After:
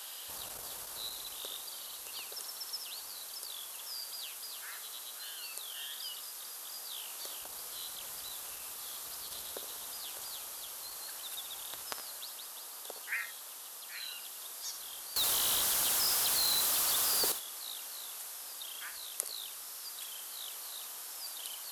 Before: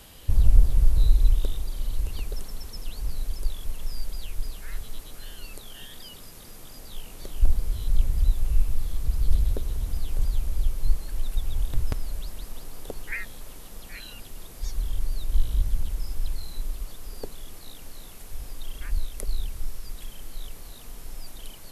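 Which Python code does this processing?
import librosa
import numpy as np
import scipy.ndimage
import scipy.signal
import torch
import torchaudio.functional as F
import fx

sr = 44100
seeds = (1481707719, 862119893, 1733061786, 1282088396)

y = 10.0 ** (-6.0 / 20.0) * np.tanh(x / 10.0 ** (-6.0 / 20.0))
y = scipy.signal.sosfilt(scipy.signal.butter(2, 1100.0, 'highpass', fs=sr, output='sos'), y)
y = fx.rider(y, sr, range_db=10, speed_s=2.0)
y = fx.leveller(y, sr, passes=5, at=(15.16, 17.32))
y = fx.peak_eq(y, sr, hz=2200.0, db=-7.5, octaves=0.76)
y = fx.room_early_taps(y, sr, ms=(61, 75), db=(-13.0, -12.5))
y = y * librosa.db_to_amplitude(4.5)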